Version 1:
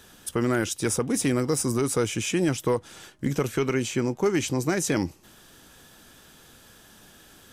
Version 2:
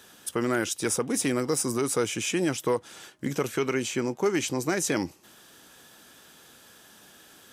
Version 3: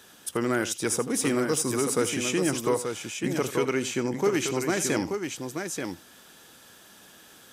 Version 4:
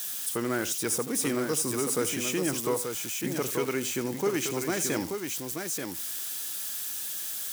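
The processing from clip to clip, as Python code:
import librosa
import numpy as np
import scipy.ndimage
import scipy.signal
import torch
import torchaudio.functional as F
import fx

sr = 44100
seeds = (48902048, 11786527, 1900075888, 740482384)

y1 = fx.highpass(x, sr, hz=260.0, slope=6)
y2 = fx.echo_multitap(y1, sr, ms=(81, 882), db=(-14.5, -6.0))
y3 = y2 + 0.5 * 10.0 ** (-25.5 / 20.0) * np.diff(np.sign(y2), prepend=np.sign(y2[:1]))
y3 = F.gain(torch.from_numpy(y3), -3.5).numpy()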